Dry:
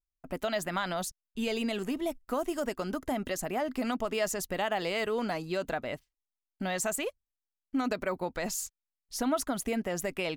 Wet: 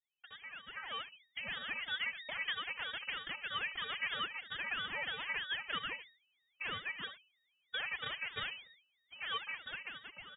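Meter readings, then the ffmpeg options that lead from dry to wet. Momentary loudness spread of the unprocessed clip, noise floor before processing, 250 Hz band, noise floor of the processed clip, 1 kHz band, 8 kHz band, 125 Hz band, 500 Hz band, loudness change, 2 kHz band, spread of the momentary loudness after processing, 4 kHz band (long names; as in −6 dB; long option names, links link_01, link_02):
5 LU, below −85 dBFS, −27.0 dB, −80 dBFS, −9.5 dB, below −40 dB, −16.5 dB, −23.0 dB, −6.5 dB, +0.5 dB, 10 LU, +1.5 dB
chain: -af "asoftclip=type=hard:threshold=-32dB,equalizer=frequency=2000:width=6.2:gain=-4.5,flanger=delay=1.1:depth=2.7:regen=-62:speed=1.4:shape=sinusoidal,acompressor=threshold=-48dB:ratio=4,afftfilt=real='hypot(re,im)*cos(PI*b)':imag='0':win_size=512:overlap=0.75,alimiter=level_in=15dB:limit=-24dB:level=0:latency=1:release=217,volume=-15dB,aecho=1:1:71:0.251,lowpass=frequency=2400:width_type=q:width=0.5098,lowpass=frequency=2400:width_type=q:width=0.6013,lowpass=frequency=2400:width_type=q:width=0.9,lowpass=frequency=2400:width_type=q:width=2.563,afreqshift=-2800,dynaudnorm=framelen=200:gausssize=9:maxgain=14dB,highpass=frequency=160:width=0.5412,highpass=frequency=160:width=1.3066,aemphasis=mode=reproduction:type=50fm,aeval=exprs='val(0)*sin(2*PI*560*n/s+560*0.75/3.1*sin(2*PI*3.1*n/s))':channel_layout=same,volume=4dB"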